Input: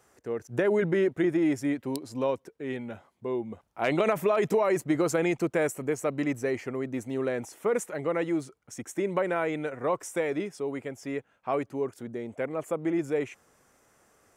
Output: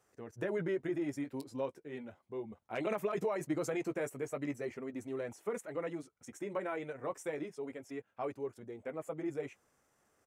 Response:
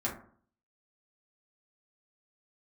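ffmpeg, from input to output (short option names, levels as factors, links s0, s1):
-af "flanger=delay=9.3:depth=5.8:regen=-26:speed=0.26:shape=sinusoidal,atempo=1.4,volume=0.473"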